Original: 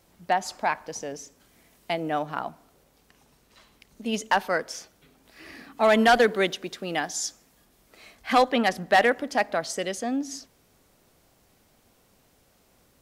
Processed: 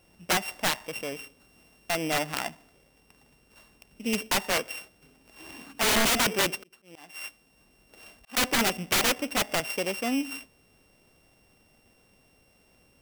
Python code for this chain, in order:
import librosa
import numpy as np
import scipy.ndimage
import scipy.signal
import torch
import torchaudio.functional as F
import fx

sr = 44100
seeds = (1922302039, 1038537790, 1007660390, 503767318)

y = np.r_[np.sort(x[:len(x) // 16 * 16].reshape(-1, 16), axis=1).ravel(), x[len(x) // 16 * 16:]]
y = fx.auto_swell(y, sr, attack_ms=710.0, at=(6.56, 8.37))
y = (np.mod(10.0 ** (17.5 / 20.0) * y + 1.0, 2.0) - 1.0) / 10.0 ** (17.5 / 20.0)